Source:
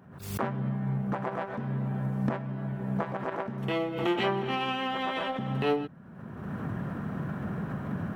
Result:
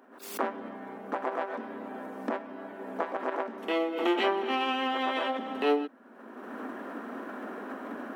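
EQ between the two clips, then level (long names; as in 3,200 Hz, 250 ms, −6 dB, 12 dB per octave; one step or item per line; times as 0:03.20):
elliptic high-pass filter 250 Hz, stop band 40 dB
+2.0 dB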